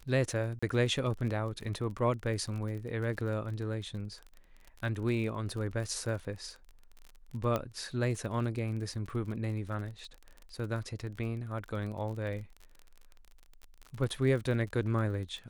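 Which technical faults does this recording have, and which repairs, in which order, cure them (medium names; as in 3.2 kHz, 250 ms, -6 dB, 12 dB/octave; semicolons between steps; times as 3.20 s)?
crackle 33 per s -39 dBFS
0.59–0.62 s: dropout 35 ms
7.56 s: pop -18 dBFS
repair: de-click; interpolate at 0.59 s, 35 ms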